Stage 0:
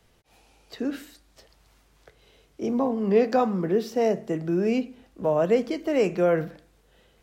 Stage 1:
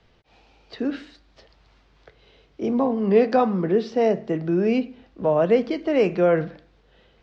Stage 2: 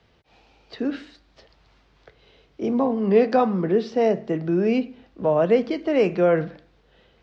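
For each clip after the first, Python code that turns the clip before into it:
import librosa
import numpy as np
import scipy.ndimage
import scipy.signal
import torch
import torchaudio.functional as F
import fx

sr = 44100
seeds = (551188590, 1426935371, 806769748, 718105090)

y1 = scipy.signal.sosfilt(scipy.signal.butter(4, 4800.0, 'lowpass', fs=sr, output='sos'), x)
y1 = y1 * librosa.db_to_amplitude(3.0)
y2 = scipy.signal.sosfilt(scipy.signal.butter(2, 44.0, 'highpass', fs=sr, output='sos'), y1)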